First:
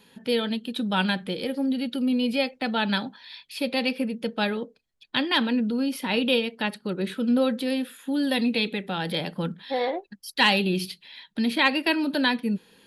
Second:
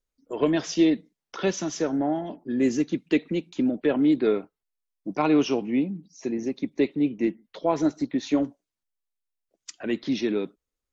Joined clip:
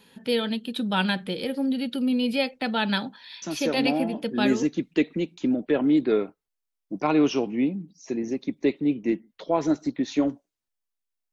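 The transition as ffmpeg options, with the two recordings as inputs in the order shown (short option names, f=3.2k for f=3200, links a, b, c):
-filter_complex "[0:a]apad=whole_dur=11.32,atrim=end=11.32,atrim=end=4.94,asetpts=PTS-STARTPTS[a];[1:a]atrim=start=1.57:end=9.47,asetpts=PTS-STARTPTS[b];[a][b]acrossfade=d=1.52:c1=log:c2=log"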